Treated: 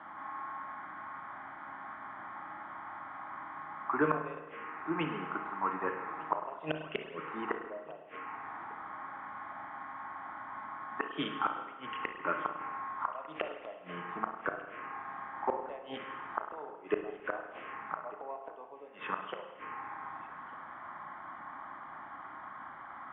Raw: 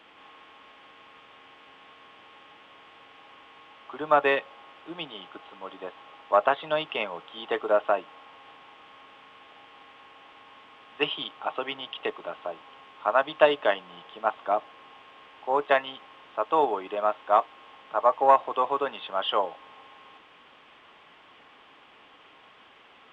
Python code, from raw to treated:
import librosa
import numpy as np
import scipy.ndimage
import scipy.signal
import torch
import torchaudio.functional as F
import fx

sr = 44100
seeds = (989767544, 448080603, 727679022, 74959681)

p1 = fx.highpass(x, sr, hz=140.0, slope=6)
p2 = fx.env_phaser(p1, sr, low_hz=440.0, high_hz=1500.0, full_db=-23.0)
p3 = scipy.signal.sosfilt(scipy.signal.butter(4, 2200.0, 'lowpass', fs=sr, output='sos'), p2)
p4 = fx.gate_flip(p3, sr, shuts_db=-28.0, range_db=-31)
p5 = p4 + fx.echo_single(p4, sr, ms=1199, db=-21.5, dry=0)
p6 = fx.rev_spring(p5, sr, rt60_s=1.2, pass_ms=(32, 51), chirp_ms=70, drr_db=5.0)
y = p6 * librosa.db_to_amplitude(10.5)